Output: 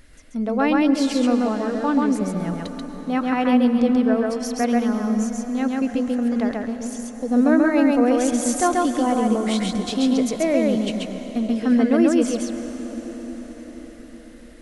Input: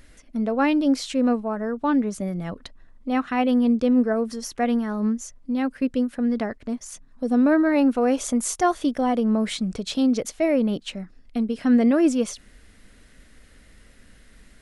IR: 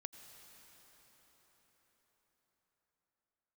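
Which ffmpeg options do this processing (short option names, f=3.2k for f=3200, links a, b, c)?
-filter_complex "[0:a]asplit=2[a][b];[1:a]atrim=start_sample=2205,asetrate=37926,aresample=44100,adelay=135[c];[b][c]afir=irnorm=-1:irlink=0,volume=3dB[d];[a][d]amix=inputs=2:normalize=0"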